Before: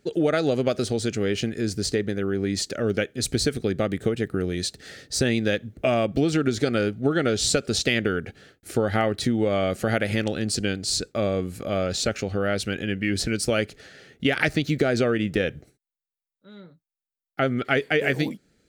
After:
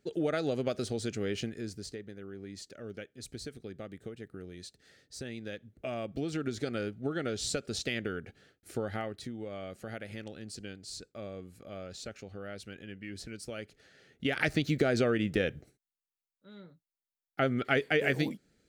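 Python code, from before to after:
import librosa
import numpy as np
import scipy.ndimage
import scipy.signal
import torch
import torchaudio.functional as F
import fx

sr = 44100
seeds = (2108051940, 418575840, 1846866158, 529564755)

y = fx.gain(x, sr, db=fx.line((1.42, -9.0), (2.0, -19.0), (5.29, -19.0), (6.46, -11.5), (8.83, -11.5), (9.31, -18.0), (13.56, -18.0), (14.56, -5.5)))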